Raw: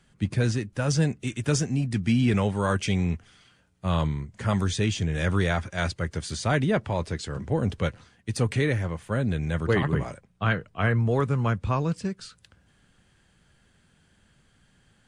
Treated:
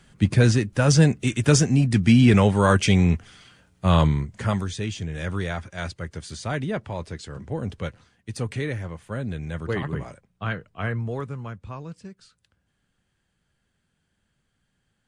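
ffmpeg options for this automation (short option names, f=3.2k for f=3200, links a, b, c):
-af "volume=7dB,afade=t=out:st=4.18:d=0.48:silence=0.281838,afade=t=out:st=10.9:d=0.6:silence=0.446684"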